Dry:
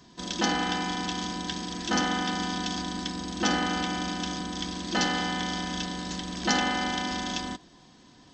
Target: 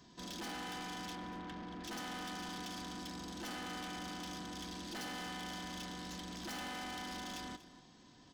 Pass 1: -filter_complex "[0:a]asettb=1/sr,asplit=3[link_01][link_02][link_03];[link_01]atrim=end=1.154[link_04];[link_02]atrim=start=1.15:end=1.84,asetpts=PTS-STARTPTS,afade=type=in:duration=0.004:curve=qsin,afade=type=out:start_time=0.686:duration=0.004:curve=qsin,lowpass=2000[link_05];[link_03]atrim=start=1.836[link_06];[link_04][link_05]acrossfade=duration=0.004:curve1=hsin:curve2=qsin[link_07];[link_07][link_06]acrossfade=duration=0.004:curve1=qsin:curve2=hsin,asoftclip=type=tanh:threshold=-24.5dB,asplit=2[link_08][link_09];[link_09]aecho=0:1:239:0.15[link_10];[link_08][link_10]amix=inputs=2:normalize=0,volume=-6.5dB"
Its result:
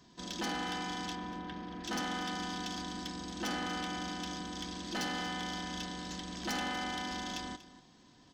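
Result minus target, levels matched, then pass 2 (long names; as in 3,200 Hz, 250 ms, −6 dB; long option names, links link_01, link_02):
soft clipping: distortion −7 dB
-filter_complex "[0:a]asettb=1/sr,asplit=3[link_01][link_02][link_03];[link_01]atrim=end=1.154[link_04];[link_02]atrim=start=1.15:end=1.84,asetpts=PTS-STARTPTS,afade=type=in:duration=0.004:curve=qsin,afade=type=out:start_time=0.686:duration=0.004:curve=qsin,lowpass=2000[link_05];[link_03]atrim=start=1.836[link_06];[link_04][link_05]acrossfade=duration=0.004:curve1=hsin:curve2=qsin[link_07];[link_07][link_06]acrossfade=duration=0.004:curve1=qsin:curve2=hsin,asoftclip=type=tanh:threshold=-35.5dB,asplit=2[link_08][link_09];[link_09]aecho=0:1:239:0.15[link_10];[link_08][link_10]amix=inputs=2:normalize=0,volume=-6.5dB"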